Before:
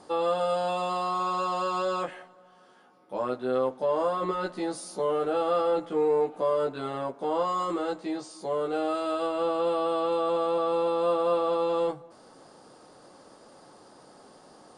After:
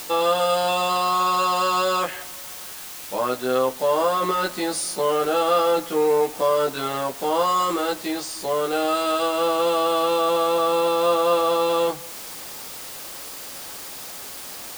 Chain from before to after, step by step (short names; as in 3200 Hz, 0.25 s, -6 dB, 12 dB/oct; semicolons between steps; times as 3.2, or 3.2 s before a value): tilt shelf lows -5.5 dB, about 1300 Hz; requantised 8-bit, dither triangular; mismatched tape noise reduction encoder only; gain +9 dB